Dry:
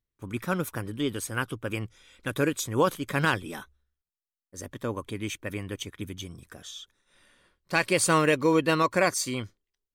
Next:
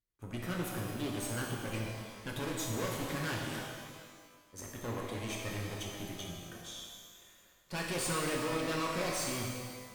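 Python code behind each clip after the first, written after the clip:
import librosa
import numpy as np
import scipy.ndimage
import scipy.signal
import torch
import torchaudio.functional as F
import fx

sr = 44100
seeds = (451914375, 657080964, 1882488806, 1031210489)

y = fx.tube_stage(x, sr, drive_db=33.0, bias=0.7)
y = fx.rev_shimmer(y, sr, seeds[0], rt60_s=1.7, semitones=12, shimmer_db=-8, drr_db=-1.5)
y = y * 10.0 ** (-3.0 / 20.0)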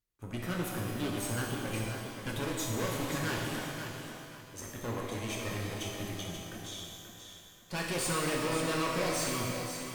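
y = fx.echo_feedback(x, sr, ms=532, feedback_pct=29, wet_db=-8)
y = y * 10.0 ** (2.0 / 20.0)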